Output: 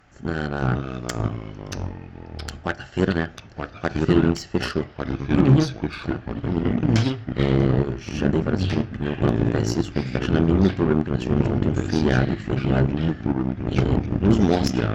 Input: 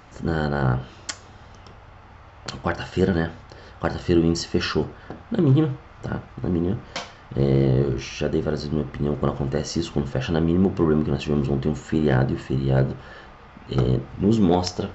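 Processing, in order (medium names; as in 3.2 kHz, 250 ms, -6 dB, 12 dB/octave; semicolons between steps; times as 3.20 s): ever faster or slower copies 424 ms, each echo -3 st, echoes 3; graphic EQ with 31 bands 500 Hz -5 dB, 1 kHz -9 dB, 1.6 kHz +4 dB, 4 kHz -4 dB; Chebyshev shaper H 3 -27 dB, 7 -23 dB, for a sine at -6.5 dBFS; trim +1.5 dB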